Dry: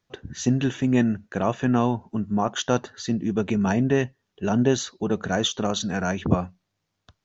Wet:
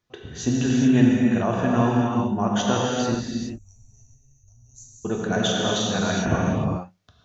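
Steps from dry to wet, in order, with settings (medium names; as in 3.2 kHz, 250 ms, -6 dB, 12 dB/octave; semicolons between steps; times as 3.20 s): 3.14–5.05 s: inverse Chebyshev band-stop 160–3500 Hz, stop band 50 dB; gated-style reverb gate 450 ms flat, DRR -3.5 dB; trim -2.5 dB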